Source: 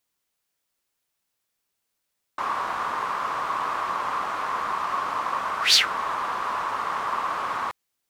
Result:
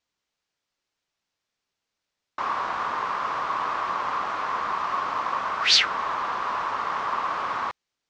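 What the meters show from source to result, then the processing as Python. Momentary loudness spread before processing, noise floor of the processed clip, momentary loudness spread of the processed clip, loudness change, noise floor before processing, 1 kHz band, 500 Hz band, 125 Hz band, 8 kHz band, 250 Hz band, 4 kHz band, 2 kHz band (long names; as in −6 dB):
10 LU, −84 dBFS, 10 LU, 0.0 dB, −79 dBFS, 0.0 dB, 0.0 dB, 0.0 dB, −3.5 dB, 0.0 dB, 0.0 dB, 0.0 dB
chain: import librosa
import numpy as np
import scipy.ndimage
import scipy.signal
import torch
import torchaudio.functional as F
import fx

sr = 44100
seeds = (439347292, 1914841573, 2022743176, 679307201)

y = scipy.signal.sosfilt(scipy.signal.butter(4, 6300.0, 'lowpass', fs=sr, output='sos'), x)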